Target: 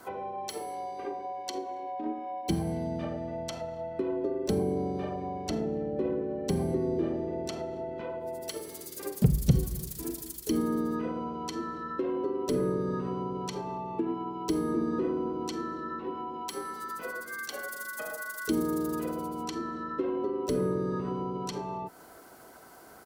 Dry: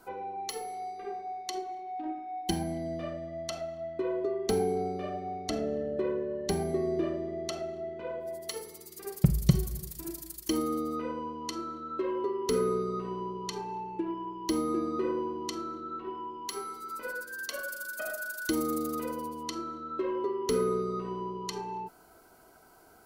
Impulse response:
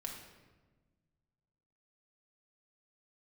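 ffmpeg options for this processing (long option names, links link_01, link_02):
-filter_complex "[0:a]highpass=frequency=90:poles=1,acrossover=split=320[link_01][link_02];[link_02]acompressor=threshold=-43dB:ratio=4[link_03];[link_01][link_03]amix=inputs=2:normalize=0,asoftclip=type=hard:threshold=-13.5dB,asplit=3[link_04][link_05][link_06];[link_05]asetrate=33038,aresample=44100,atempo=1.33484,volume=-8dB[link_07];[link_06]asetrate=58866,aresample=44100,atempo=0.749154,volume=-11dB[link_08];[link_04][link_07][link_08]amix=inputs=3:normalize=0,asoftclip=type=tanh:threshold=-16.5dB,volume=5.5dB"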